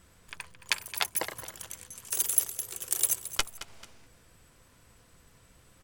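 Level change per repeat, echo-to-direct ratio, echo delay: -8.0 dB, -13.5 dB, 0.22 s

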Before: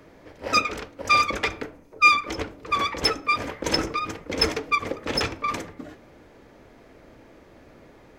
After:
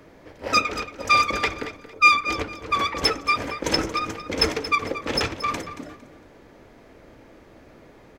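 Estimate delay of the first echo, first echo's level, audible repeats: 0.228 s, -13.0 dB, 2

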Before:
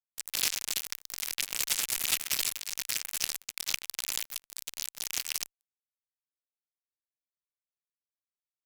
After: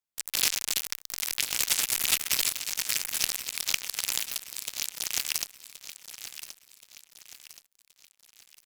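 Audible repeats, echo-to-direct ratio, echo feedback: 4, -11.0 dB, 43%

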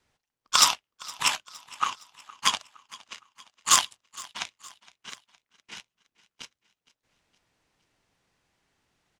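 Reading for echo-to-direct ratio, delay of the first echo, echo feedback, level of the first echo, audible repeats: -20.5 dB, 0.464 s, 49%, -21.5 dB, 3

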